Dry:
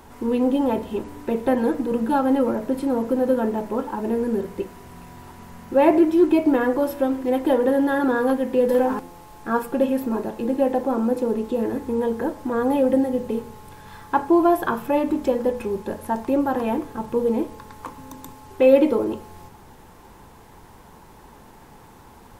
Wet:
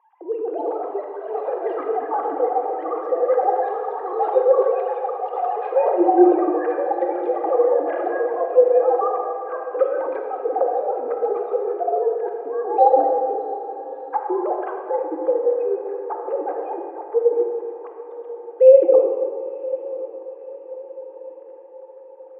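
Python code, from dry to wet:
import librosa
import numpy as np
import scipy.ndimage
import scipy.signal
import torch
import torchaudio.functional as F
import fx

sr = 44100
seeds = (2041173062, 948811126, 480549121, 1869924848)

p1 = fx.sine_speech(x, sr)
p2 = p1 + fx.echo_diffused(p1, sr, ms=1037, feedback_pct=50, wet_db=-15.5, dry=0)
p3 = fx.echo_pitch(p2, sr, ms=359, semitones=7, count=3, db_per_echo=-6.0)
p4 = fx.ladder_bandpass(p3, sr, hz=670.0, resonance_pct=45)
p5 = p4 + 0.47 * np.pad(p4, (int(2.5 * sr / 1000.0), 0))[:len(p4)]
p6 = fx.rev_freeverb(p5, sr, rt60_s=2.1, hf_ratio=0.6, predelay_ms=5, drr_db=2.5)
y = p6 * 10.0 ** (7.5 / 20.0)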